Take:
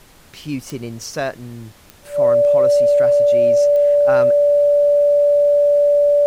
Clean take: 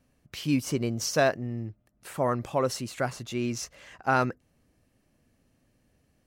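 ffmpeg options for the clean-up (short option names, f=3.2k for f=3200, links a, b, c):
-af "adeclick=t=4,bandreject=f=580:w=30,agate=range=-21dB:threshold=-35dB"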